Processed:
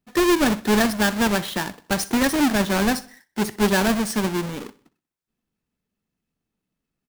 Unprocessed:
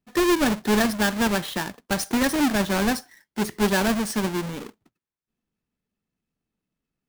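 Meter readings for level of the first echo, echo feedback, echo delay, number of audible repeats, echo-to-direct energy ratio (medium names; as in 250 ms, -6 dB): -20.0 dB, 47%, 63 ms, 3, -19.0 dB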